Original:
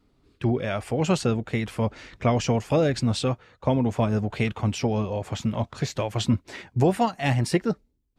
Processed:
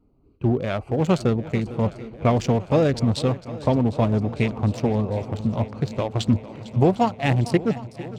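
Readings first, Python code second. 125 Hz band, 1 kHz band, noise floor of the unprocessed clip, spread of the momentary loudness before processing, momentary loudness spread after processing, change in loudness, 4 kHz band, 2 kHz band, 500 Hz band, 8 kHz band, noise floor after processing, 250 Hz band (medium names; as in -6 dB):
+3.0 dB, +2.0 dB, -68 dBFS, 7 LU, 6 LU, +2.5 dB, -1.5 dB, 0.0 dB, +2.5 dB, -5.0 dB, -49 dBFS, +3.0 dB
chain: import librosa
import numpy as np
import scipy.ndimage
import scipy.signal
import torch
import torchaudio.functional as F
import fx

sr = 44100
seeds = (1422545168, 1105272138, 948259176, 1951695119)

y = fx.wiener(x, sr, points=25)
y = fx.echo_swing(y, sr, ms=753, ratio=1.5, feedback_pct=61, wet_db=-16.5)
y = y * librosa.db_to_amplitude(3.0)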